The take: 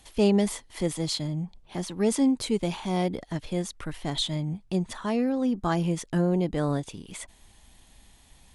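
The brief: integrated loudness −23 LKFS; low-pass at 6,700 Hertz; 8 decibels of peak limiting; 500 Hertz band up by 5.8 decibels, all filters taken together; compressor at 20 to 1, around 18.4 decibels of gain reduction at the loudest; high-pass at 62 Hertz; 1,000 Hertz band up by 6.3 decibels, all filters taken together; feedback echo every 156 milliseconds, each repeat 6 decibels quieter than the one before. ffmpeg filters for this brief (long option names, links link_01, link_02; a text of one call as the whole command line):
ffmpeg -i in.wav -af "highpass=62,lowpass=6700,equalizer=frequency=500:width_type=o:gain=6,equalizer=frequency=1000:width_type=o:gain=6,acompressor=threshold=-33dB:ratio=20,alimiter=level_in=6dB:limit=-24dB:level=0:latency=1,volume=-6dB,aecho=1:1:156|312|468|624|780|936:0.501|0.251|0.125|0.0626|0.0313|0.0157,volume=16dB" out.wav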